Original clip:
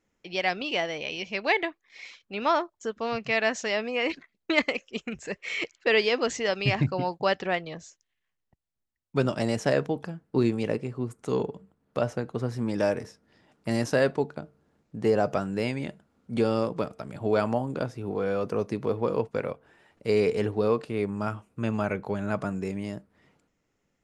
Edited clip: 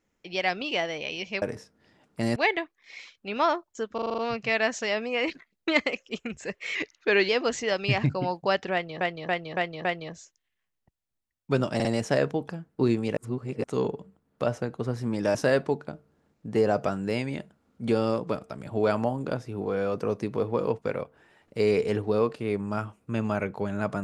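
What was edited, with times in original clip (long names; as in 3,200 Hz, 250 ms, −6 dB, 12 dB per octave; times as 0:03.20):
0:03.00: stutter 0.04 s, 7 plays
0:05.57–0:06.06: play speed 91%
0:07.50–0:07.78: repeat, 5 plays
0:09.40: stutter 0.05 s, 3 plays
0:10.72–0:11.19: reverse
0:12.90–0:13.84: move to 0:01.42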